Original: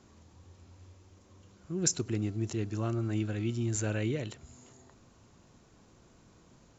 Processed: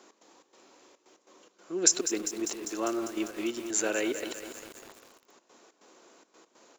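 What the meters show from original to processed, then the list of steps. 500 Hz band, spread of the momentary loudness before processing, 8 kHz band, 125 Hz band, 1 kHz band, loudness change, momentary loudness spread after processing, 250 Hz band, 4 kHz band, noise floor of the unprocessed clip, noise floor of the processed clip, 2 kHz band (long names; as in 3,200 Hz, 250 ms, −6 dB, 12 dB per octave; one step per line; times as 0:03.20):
+5.0 dB, 7 LU, can't be measured, −24.5 dB, +7.0 dB, +3.0 dB, 18 LU, +0.5 dB, +7.5 dB, −61 dBFS, −70 dBFS, +6.5 dB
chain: gate pattern "x.xx.xxxx." 142 BPM −12 dB
high-pass filter 330 Hz 24 dB per octave
feedback echo at a low word length 199 ms, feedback 80%, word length 8 bits, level −10 dB
level +7 dB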